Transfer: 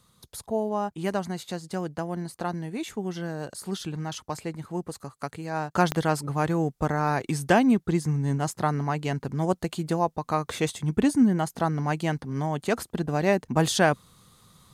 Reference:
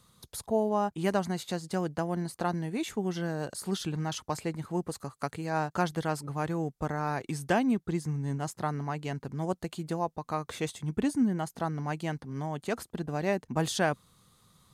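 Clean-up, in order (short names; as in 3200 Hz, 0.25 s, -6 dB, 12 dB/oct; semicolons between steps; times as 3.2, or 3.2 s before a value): de-click; gain correction -6.5 dB, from 5.75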